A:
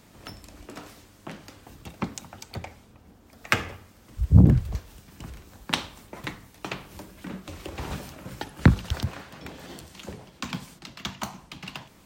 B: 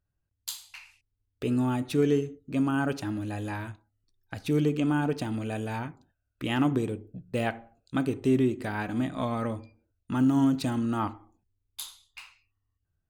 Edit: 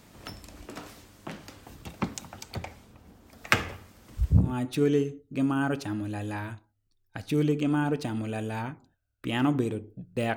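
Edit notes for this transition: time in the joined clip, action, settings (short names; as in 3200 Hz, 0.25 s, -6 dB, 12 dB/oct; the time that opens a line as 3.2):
A
4.44 switch to B from 1.61 s, crossfade 0.34 s quadratic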